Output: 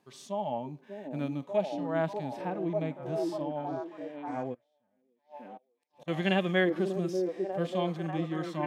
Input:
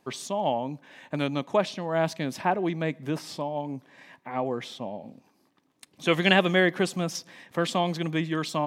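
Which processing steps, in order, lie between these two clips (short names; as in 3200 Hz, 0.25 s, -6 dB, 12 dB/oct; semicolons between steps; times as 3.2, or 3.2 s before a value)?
0.6–1.43 median filter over 5 samples; HPF 45 Hz; on a send: delay with a stepping band-pass 0.592 s, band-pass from 340 Hz, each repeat 0.7 oct, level 0 dB; 4.54–6.08 on the sum: flipped gate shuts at -27 dBFS, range -36 dB; harmonic-percussive split percussive -17 dB; gain -4 dB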